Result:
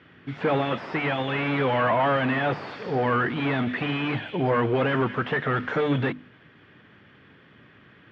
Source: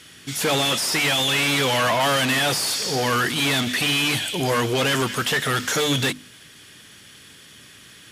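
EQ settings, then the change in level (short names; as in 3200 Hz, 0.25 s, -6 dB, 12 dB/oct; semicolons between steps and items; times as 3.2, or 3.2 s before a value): HPF 80 Hz; Bessel low-pass 1500 Hz, order 4; 0.0 dB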